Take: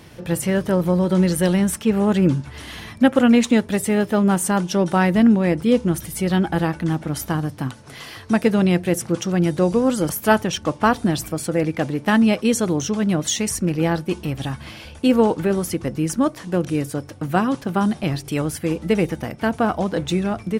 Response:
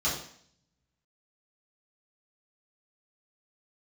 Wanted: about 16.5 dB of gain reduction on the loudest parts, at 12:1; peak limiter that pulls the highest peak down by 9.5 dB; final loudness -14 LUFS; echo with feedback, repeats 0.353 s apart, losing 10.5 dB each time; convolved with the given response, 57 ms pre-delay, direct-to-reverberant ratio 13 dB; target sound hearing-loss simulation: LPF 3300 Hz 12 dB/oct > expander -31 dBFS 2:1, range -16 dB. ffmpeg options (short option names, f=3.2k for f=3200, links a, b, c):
-filter_complex "[0:a]acompressor=threshold=-27dB:ratio=12,alimiter=level_in=2dB:limit=-24dB:level=0:latency=1,volume=-2dB,aecho=1:1:353|706|1059:0.299|0.0896|0.0269,asplit=2[a][b];[1:a]atrim=start_sample=2205,adelay=57[c];[b][c]afir=irnorm=-1:irlink=0,volume=-22.5dB[d];[a][d]amix=inputs=2:normalize=0,lowpass=3.3k,agate=range=-16dB:threshold=-31dB:ratio=2,volume=21dB"